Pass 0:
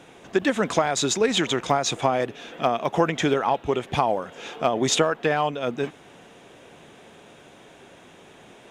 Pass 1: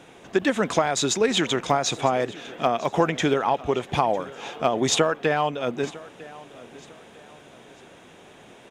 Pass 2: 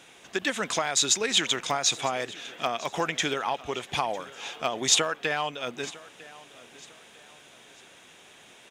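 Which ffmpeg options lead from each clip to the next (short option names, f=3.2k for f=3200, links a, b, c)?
-af "aecho=1:1:952|1904|2856:0.1|0.035|0.0123"
-af "tiltshelf=f=1.3k:g=-7.5,volume=-3.5dB"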